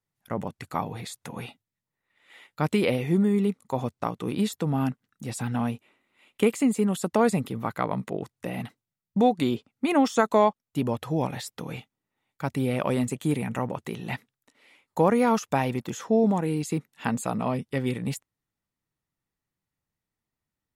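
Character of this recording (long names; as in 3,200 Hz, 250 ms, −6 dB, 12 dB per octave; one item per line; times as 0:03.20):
background noise floor −88 dBFS
spectral slope −6.0 dB per octave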